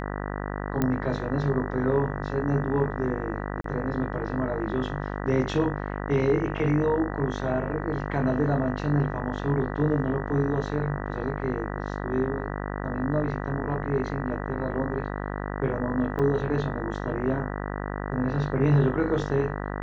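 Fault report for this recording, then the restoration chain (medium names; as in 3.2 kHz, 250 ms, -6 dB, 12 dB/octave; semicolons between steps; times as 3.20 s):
buzz 50 Hz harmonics 39 -32 dBFS
0.82 s: pop -12 dBFS
3.61–3.64 s: dropout 33 ms
16.19–16.20 s: dropout 5.9 ms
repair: de-click; de-hum 50 Hz, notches 39; interpolate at 3.61 s, 33 ms; interpolate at 16.19 s, 5.9 ms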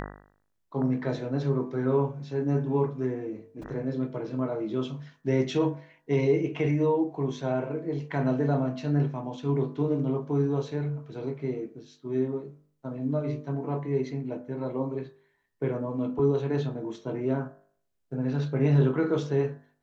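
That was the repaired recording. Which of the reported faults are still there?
nothing left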